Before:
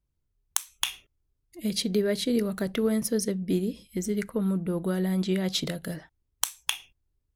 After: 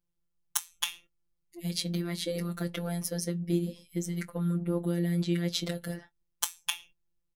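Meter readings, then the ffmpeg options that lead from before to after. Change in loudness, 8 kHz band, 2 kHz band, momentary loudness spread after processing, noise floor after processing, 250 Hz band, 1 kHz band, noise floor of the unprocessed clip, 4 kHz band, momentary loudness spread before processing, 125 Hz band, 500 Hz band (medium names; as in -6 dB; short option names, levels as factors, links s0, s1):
-4.0 dB, -3.0 dB, -3.5 dB, 7 LU, -79 dBFS, -4.5 dB, -3.5 dB, -77 dBFS, -3.5 dB, 8 LU, +1.0 dB, -7.0 dB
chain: -filter_complex "[0:a]afftfilt=real='hypot(re,im)*cos(PI*b)':imag='0':win_size=1024:overlap=0.75,asplit=2[s0][s1];[s1]adelay=21,volume=0.211[s2];[s0][s2]amix=inputs=2:normalize=0"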